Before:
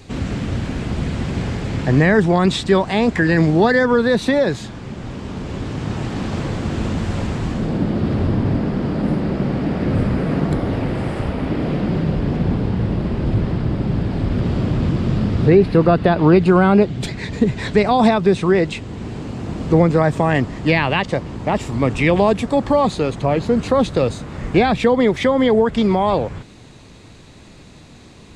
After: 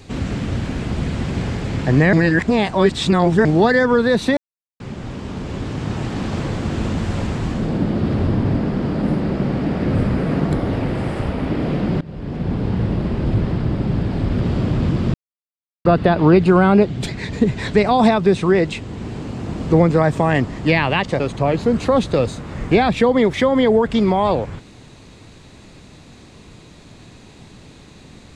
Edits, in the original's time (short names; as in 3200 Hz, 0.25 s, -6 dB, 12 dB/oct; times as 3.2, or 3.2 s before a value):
2.13–3.45 reverse
4.37–4.8 mute
12.01–12.73 fade in, from -21 dB
15.14–15.85 mute
21.2–23.03 cut